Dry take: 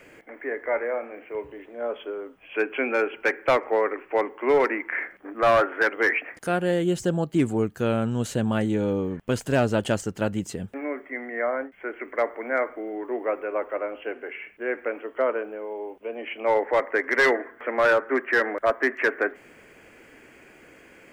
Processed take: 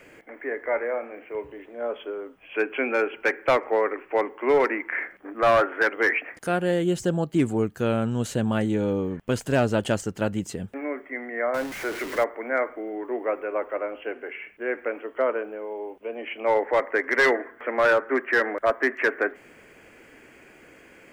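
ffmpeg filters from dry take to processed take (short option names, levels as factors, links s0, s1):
-filter_complex "[0:a]asettb=1/sr,asplit=3[s0][s1][s2];[s0]atrim=end=11.544[s3];[s1]atrim=start=11.54:end=12.24,asetpts=PTS-STARTPTS,afade=t=in:d=0.004:c=qsin,afade=t=out:st=0.696:d=0.004:c=qsin,aeval=exprs='val(0)+0.5*0.0299*sgn(val(0))':c=same[s4];[s2]atrim=start=12.236[s5];[s3][s4]acrossfade=d=0.004:c1=hsin:c2=qsin[s6];[s6][s5]acrossfade=d=0.004:c1=qsin:c2=hsin"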